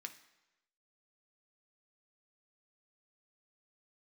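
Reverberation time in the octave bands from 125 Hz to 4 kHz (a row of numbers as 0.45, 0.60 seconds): 0.95, 0.90, 1.0, 1.0, 1.0, 0.95 seconds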